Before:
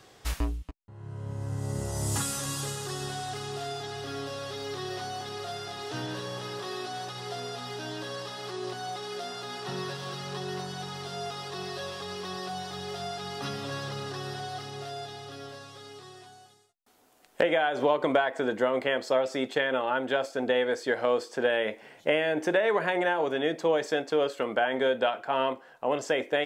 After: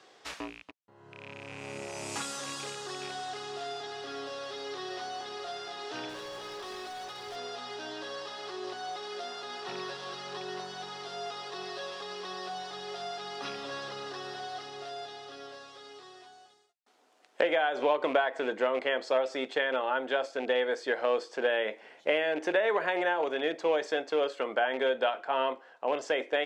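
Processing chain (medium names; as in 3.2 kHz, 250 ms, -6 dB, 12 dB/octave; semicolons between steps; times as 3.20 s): rattle on loud lows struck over -34 dBFS, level -31 dBFS; band-pass 330–6000 Hz; 6.09–7.36 s: hard clipper -36.5 dBFS, distortion -30 dB; trim -1.5 dB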